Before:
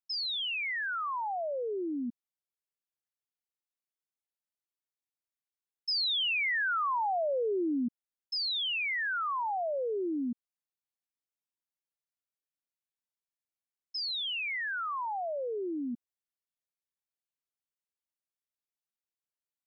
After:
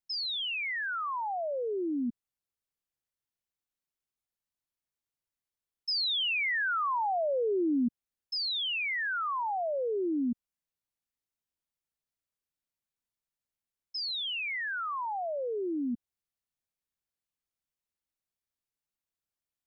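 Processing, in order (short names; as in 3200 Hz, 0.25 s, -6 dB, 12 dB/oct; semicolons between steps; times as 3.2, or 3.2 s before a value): low shelf 170 Hz +10.5 dB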